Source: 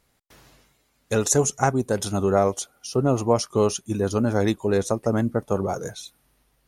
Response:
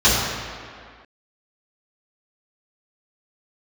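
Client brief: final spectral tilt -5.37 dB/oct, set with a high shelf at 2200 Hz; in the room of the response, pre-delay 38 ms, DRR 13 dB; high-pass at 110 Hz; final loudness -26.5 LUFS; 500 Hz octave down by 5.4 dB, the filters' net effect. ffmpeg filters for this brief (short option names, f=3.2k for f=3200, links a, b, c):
-filter_complex "[0:a]highpass=110,equalizer=f=500:t=o:g=-6.5,highshelf=f=2.2k:g=-4,asplit=2[a][b];[1:a]atrim=start_sample=2205,adelay=38[c];[b][c]afir=irnorm=-1:irlink=0,volume=-36.5dB[d];[a][d]amix=inputs=2:normalize=0"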